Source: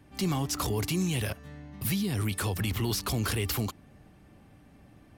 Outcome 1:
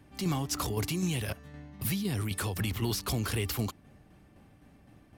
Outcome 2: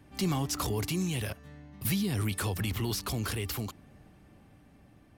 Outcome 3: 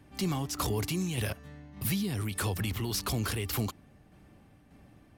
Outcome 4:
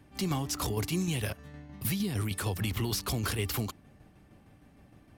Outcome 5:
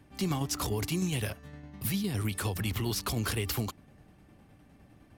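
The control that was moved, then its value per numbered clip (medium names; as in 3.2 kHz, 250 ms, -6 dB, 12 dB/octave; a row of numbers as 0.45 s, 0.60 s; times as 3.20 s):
tremolo, rate: 3.9 Hz, 0.54 Hz, 1.7 Hz, 6.5 Hz, 9.8 Hz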